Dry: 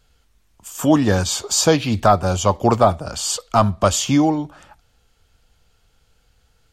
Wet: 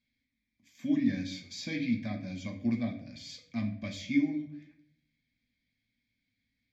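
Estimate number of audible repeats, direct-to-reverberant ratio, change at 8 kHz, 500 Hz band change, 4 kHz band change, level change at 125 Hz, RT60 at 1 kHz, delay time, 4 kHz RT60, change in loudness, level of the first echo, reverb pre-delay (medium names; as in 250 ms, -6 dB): no echo, 1.5 dB, -29.5 dB, -28.0 dB, -19.0 dB, -18.0 dB, 0.50 s, no echo, 0.45 s, -15.5 dB, no echo, 5 ms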